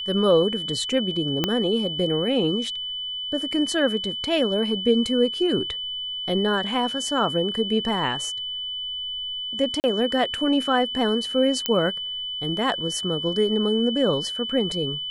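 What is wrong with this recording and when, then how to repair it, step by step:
whistle 3,000 Hz −28 dBFS
0:01.44: click −7 dBFS
0:09.80–0:09.84: drop-out 39 ms
0:11.66: click −6 dBFS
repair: click removal
notch filter 3,000 Hz, Q 30
repair the gap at 0:09.80, 39 ms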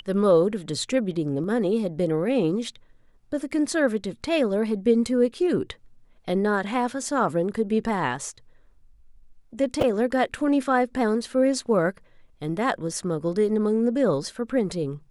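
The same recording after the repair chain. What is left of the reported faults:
0:01.44: click

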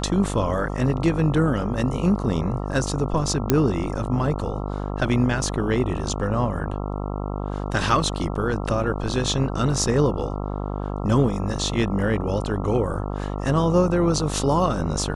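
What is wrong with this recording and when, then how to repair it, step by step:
mains buzz 50 Hz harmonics 27 −28 dBFS
0:03.50: click −3 dBFS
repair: click removal
hum removal 50 Hz, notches 27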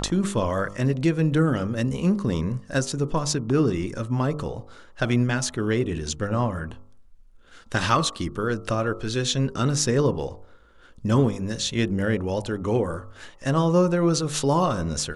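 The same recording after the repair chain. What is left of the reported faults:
0:03.50: click

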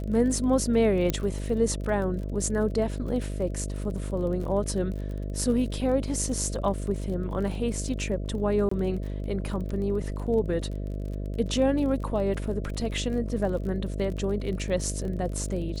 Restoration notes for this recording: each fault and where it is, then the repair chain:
mains buzz 50 Hz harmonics 13 −32 dBFS
surface crackle 35 per second −35 dBFS
0:01.10: click −11 dBFS
0:08.69–0:08.71: drop-out 24 ms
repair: click removal
hum removal 50 Hz, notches 13
repair the gap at 0:08.69, 24 ms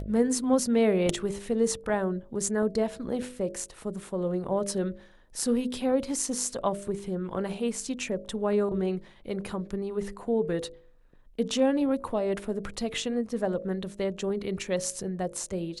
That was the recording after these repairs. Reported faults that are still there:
0:01.10: click

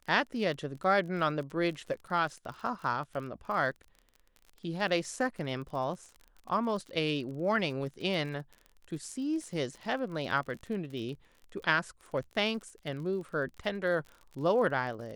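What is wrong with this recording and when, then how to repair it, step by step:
surface crackle 39 per second −40 dBFS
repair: click removal

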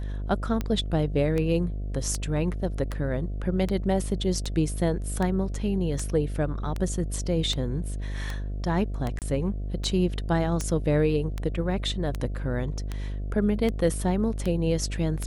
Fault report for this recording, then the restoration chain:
mains buzz 50 Hz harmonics 14 −31 dBFS
scratch tick 78 rpm −16 dBFS
0:09.19–0:09.22: drop-out 28 ms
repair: click removal
hum removal 50 Hz, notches 14
repair the gap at 0:09.19, 28 ms

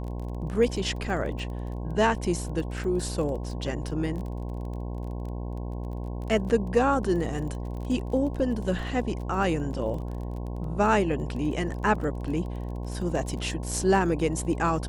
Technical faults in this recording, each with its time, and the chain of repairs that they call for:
mains buzz 60 Hz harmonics 18 −33 dBFS
surface crackle 24 per second −35 dBFS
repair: click removal
hum removal 60 Hz, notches 18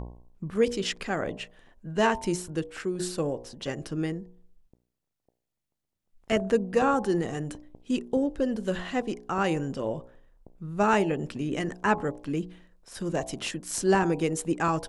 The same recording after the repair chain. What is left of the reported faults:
none of them is left

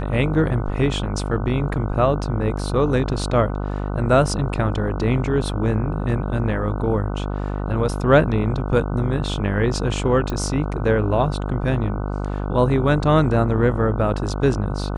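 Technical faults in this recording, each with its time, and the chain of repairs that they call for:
mains buzz 50 Hz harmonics 30 −25 dBFS
0:10.30: click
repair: click removal
hum removal 50 Hz, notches 30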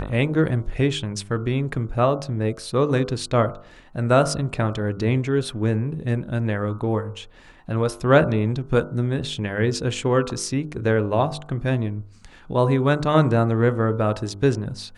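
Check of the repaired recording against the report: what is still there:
none of them is left

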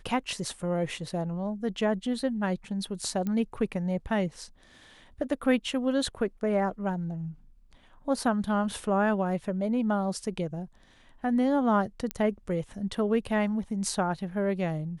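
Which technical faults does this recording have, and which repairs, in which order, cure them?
0:03.27: click −20 dBFS
0:12.11: click −15 dBFS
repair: click removal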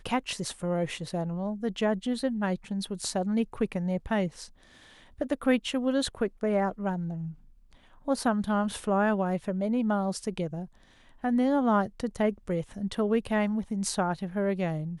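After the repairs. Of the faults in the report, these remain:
0:12.11: click

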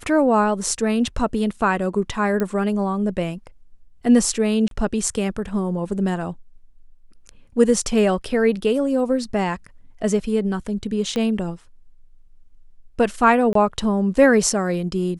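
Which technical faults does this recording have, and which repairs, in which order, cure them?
0:02.40: click −12 dBFS
0:04.68–0:04.71: drop-out 32 ms
0:11.16: click −13 dBFS
0:13.53–0:13.55: drop-out 23 ms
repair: click removal
repair the gap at 0:04.68, 32 ms
repair the gap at 0:13.53, 23 ms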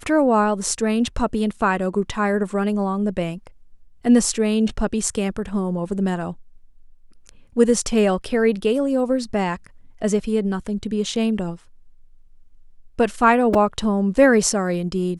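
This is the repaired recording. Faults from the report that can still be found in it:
0:02.40: click
0:11.16: click

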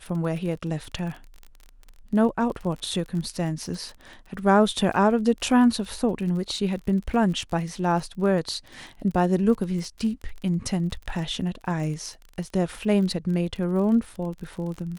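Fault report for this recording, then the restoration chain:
surface crackle 31 per second −33 dBFS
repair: click removal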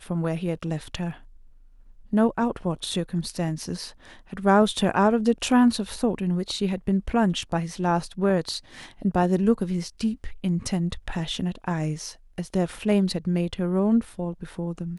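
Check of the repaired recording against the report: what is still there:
none of them is left

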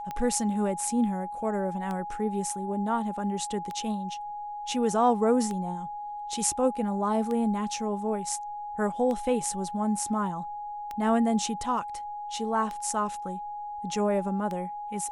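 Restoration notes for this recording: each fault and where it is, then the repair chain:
scratch tick 33 1/3 rpm −21 dBFS
whistle 830 Hz −34 dBFS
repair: click removal
notch filter 830 Hz, Q 30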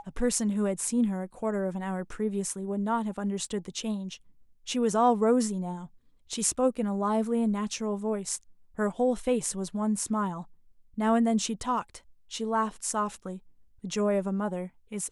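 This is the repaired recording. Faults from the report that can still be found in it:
none of them is left

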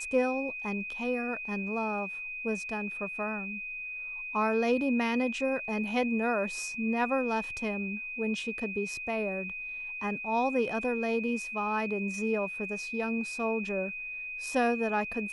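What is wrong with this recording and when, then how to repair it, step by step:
whistle 2,500 Hz −36 dBFS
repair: notch filter 2,500 Hz, Q 30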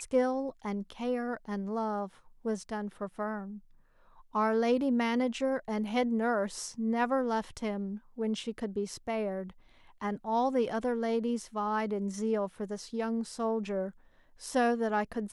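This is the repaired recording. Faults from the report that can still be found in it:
none of them is left

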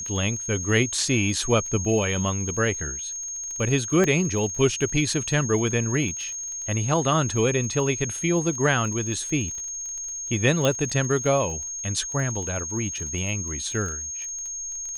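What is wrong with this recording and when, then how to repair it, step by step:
surface crackle 26 per second −32 dBFS
whistle 6,500 Hz −30 dBFS
0:04.04: click −11 dBFS
0:10.65: click −9 dBFS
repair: click removal
notch filter 6,500 Hz, Q 30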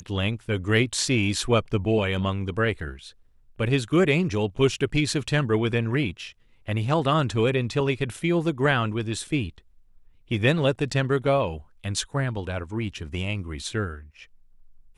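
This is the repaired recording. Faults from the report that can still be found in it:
none of them is left

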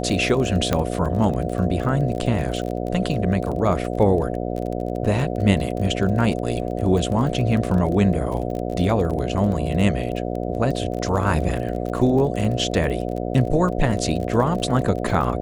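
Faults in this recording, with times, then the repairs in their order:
mains buzz 60 Hz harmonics 12 −26 dBFS
surface crackle 27 per second −27 dBFS
0:00.73: click −6 dBFS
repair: click removal
hum removal 60 Hz, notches 12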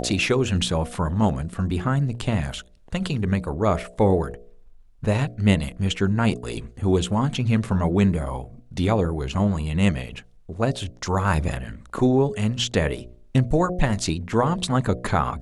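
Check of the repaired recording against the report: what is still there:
none of them is left

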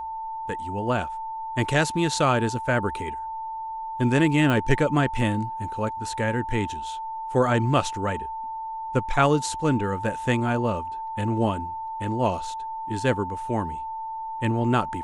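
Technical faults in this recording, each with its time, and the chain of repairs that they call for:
whistle 890 Hz −30 dBFS
0:04.50: click −13 dBFS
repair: click removal
notch filter 890 Hz, Q 30

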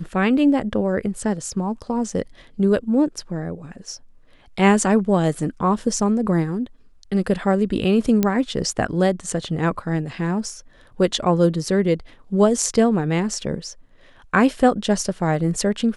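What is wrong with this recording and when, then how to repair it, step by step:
0:08.23: click −6 dBFS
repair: click removal

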